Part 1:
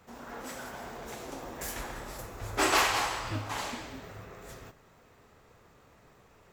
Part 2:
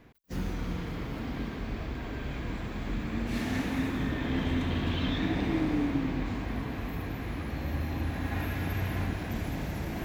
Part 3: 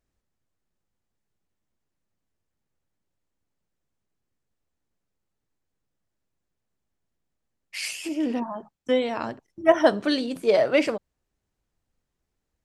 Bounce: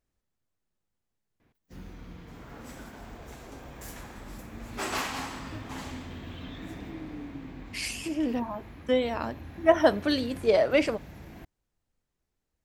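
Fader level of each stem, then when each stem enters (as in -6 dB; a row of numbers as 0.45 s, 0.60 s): -7.0 dB, -11.5 dB, -2.5 dB; 2.20 s, 1.40 s, 0.00 s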